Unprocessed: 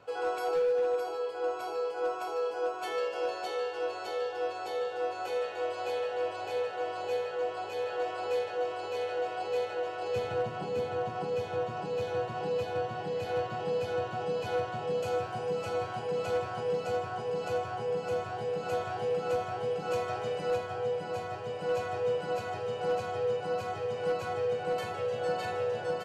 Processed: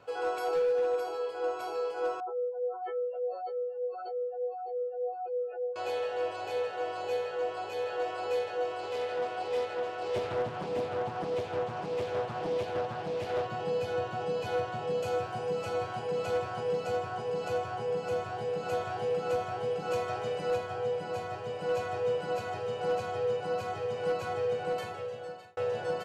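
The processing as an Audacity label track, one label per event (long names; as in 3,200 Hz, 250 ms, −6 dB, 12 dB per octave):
2.200000	5.760000	expanding power law on the bin magnitudes exponent 3.3
8.800000	13.460000	highs frequency-modulated by the lows depth 0.47 ms
24.630000	25.570000	fade out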